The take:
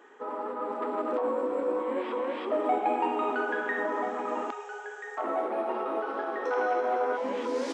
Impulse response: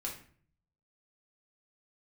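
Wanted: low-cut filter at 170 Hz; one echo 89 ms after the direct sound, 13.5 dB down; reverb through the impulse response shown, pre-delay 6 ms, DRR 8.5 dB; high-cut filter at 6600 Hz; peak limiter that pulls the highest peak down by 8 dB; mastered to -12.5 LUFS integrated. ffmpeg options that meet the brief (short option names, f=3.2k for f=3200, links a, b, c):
-filter_complex "[0:a]highpass=170,lowpass=6.6k,alimiter=limit=-23.5dB:level=0:latency=1,aecho=1:1:89:0.211,asplit=2[a][b];[1:a]atrim=start_sample=2205,adelay=6[c];[b][c]afir=irnorm=-1:irlink=0,volume=-9dB[d];[a][d]amix=inputs=2:normalize=0,volume=19dB"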